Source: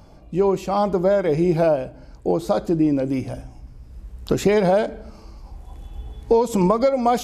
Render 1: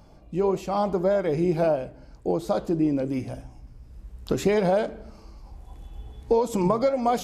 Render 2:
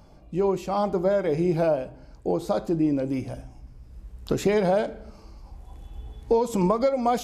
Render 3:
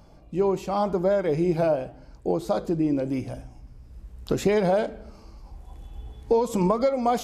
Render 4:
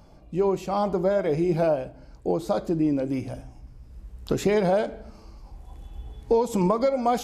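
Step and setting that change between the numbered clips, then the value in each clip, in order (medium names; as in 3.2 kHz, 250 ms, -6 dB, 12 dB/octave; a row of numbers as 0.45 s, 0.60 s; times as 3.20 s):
flange, rate: 1.7 Hz, 0.28 Hz, 0.88 Hz, 0.51 Hz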